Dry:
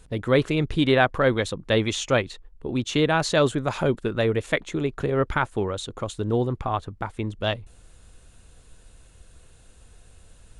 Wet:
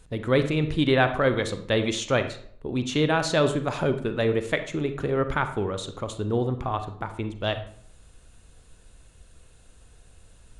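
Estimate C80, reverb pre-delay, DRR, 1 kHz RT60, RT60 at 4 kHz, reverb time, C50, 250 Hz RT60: 14.0 dB, 36 ms, 8.5 dB, 0.55 s, 0.40 s, 0.60 s, 10.5 dB, 0.60 s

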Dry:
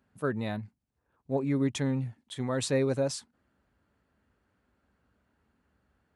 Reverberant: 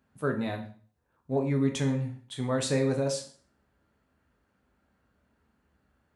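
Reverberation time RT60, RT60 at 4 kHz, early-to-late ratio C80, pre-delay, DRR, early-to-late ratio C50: 0.45 s, 0.45 s, 14.0 dB, 6 ms, 3.5 dB, 10.0 dB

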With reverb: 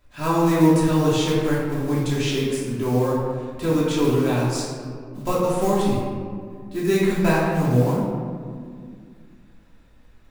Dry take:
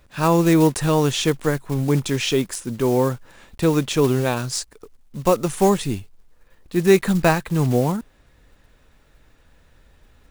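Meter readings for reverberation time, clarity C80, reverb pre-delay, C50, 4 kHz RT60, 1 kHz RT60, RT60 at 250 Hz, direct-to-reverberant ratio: 2.1 s, 1.5 dB, 3 ms, -0.5 dB, 1.0 s, 1.9 s, 3.1 s, -7.5 dB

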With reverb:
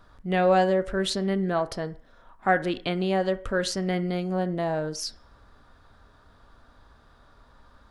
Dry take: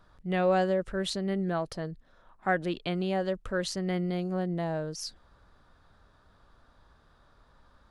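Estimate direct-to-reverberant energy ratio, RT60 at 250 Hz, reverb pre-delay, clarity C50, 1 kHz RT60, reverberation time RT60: 10.0 dB, 0.45 s, 3 ms, 16.5 dB, 0.55 s, 0.50 s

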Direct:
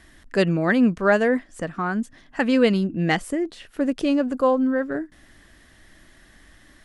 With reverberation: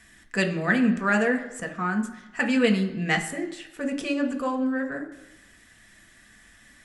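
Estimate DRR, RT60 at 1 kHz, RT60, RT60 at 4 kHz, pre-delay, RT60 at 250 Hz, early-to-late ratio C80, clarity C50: 3.5 dB, 1.0 s, 0.95 s, 1.0 s, 3 ms, 0.90 s, 13.5 dB, 11.0 dB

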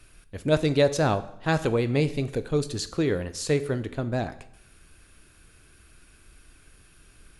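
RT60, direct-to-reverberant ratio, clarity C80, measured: 0.70 s, 11.5 dB, 18.0 dB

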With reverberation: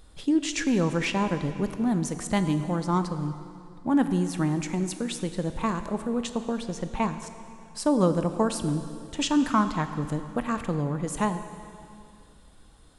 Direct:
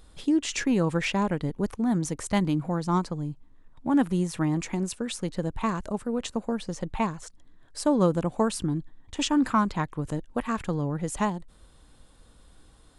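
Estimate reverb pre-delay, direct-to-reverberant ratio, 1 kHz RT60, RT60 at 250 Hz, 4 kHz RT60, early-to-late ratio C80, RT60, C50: 13 ms, 9.0 dB, 2.5 s, 2.5 s, 2.3 s, 10.5 dB, 2.5 s, 10.0 dB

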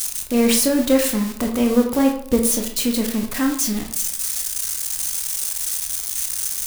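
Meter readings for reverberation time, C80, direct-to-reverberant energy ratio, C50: 0.60 s, 11.0 dB, 2.5 dB, 7.5 dB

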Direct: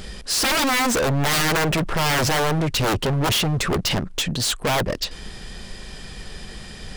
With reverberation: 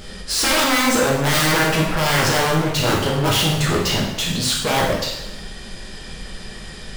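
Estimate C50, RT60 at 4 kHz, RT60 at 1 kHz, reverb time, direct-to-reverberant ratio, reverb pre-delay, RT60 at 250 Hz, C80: 2.5 dB, 0.85 s, 0.95 s, 0.95 s, -3.5 dB, 5 ms, 0.95 s, 5.5 dB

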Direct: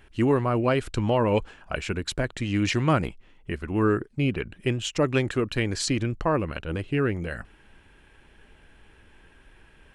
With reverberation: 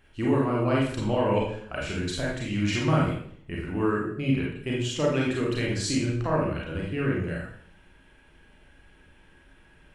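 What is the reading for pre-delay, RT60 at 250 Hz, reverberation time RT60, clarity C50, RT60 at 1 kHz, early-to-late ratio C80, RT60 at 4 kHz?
30 ms, 0.70 s, 0.60 s, 1.0 dB, 0.55 s, 6.5 dB, 0.55 s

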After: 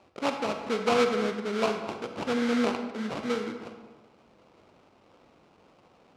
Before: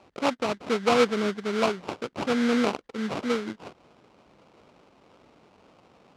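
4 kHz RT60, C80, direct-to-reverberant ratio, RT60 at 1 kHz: 0.80 s, 8.5 dB, 5.5 dB, 1.3 s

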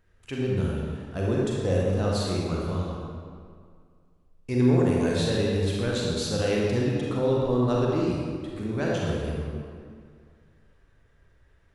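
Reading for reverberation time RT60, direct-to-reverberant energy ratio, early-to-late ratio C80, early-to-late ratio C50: 2.1 s, -4.5 dB, 0.0 dB, -2.5 dB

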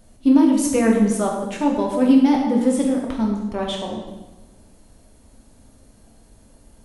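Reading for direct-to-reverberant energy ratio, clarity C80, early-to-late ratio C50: -1.0 dB, 5.5 dB, 3.5 dB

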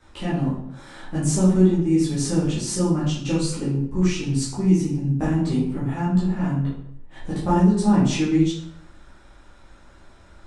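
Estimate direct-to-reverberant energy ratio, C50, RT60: -10.5 dB, 2.5 dB, 0.75 s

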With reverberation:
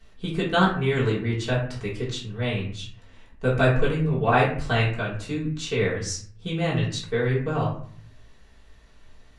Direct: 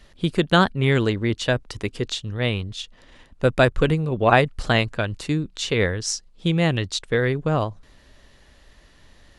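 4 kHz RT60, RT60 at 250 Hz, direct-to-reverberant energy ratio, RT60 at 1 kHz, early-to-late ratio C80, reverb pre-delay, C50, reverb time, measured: 0.35 s, 0.65 s, -8.0 dB, 0.50 s, 10.0 dB, 3 ms, 5.5 dB, 0.50 s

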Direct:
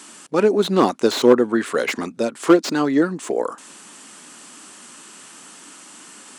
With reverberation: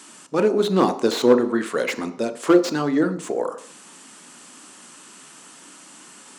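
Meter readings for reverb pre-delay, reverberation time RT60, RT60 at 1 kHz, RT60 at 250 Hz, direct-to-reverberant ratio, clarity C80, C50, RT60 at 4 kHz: 24 ms, 0.55 s, 0.55 s, 0.50 s, 9.0 dB, 16.0 dB, 13.5 dB, 0.60 s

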